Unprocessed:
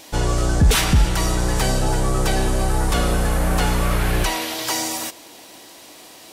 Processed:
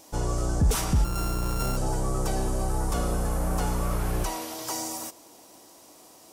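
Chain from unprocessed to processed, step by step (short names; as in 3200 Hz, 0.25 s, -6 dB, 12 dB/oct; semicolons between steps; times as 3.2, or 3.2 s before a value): 1.04–1.77 sample sorter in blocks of 32 samples; band shelf 2600 Hz -8.5 dB; gain -7.5 dB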